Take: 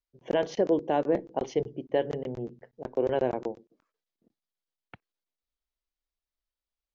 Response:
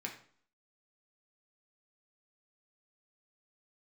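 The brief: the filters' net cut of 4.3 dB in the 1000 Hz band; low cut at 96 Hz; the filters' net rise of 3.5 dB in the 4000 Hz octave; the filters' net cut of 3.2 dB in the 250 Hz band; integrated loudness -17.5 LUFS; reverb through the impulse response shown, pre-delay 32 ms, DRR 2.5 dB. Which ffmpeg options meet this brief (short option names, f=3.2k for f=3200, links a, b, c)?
-filter_complex "[0:a]highpass=96,equalizer=f=250:t=o:g=-4,equalizer=f=1k:t=o:g=-6.5,equalizer=f=4k:t=o:g=6,asplit=2[a][b];[1:a]atrim=start_sample=2205,adelay=32[c];[b][c]afir=irnorm=-1:irlink=0,volume=-3dB[d];[a][d]amix=inputs=2:normalize=0,volume=13dB"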